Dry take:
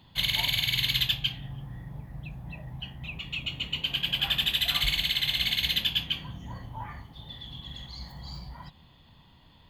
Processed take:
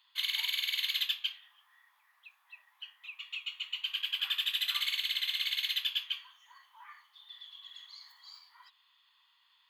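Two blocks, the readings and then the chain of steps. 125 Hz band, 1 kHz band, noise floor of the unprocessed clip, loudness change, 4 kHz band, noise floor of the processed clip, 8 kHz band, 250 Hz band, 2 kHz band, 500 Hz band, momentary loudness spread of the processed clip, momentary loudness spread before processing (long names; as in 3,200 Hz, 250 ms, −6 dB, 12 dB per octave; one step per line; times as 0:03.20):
below −40 dB, −11.0 dB, −57 dBFS, −5.5 dB, −5.5 dB, −70 dBFS, −6.5 dB, below −40 dB, −5.5 dB, below −30 dB, 19 LU, 17 LU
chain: Chebyshev high-pass filter 1,100 Hz, order 4
level −5.5 dB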